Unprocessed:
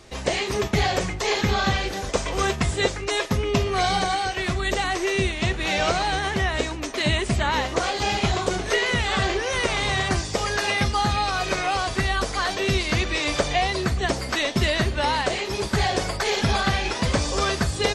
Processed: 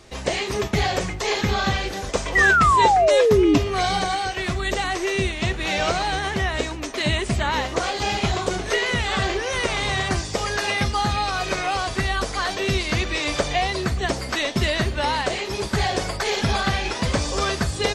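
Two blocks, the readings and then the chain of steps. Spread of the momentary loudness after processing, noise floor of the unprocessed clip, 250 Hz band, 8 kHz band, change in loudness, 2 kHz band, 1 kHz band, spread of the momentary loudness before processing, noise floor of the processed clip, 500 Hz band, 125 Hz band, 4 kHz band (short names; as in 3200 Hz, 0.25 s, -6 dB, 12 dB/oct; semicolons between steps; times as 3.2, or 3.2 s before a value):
9 LU, -31 dBFS, +1.5 dB, 0.0 dB, +1.5 dB, +2.0 dB, +2.5 dB, 3 LU, -31 dBFS, +2.5 dB, 0.0 dB, 0.0 dB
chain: short-mantissa float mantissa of 6-bit; painted sound fall, 2.35–3.58, 280–2000 Hz -16 dBFS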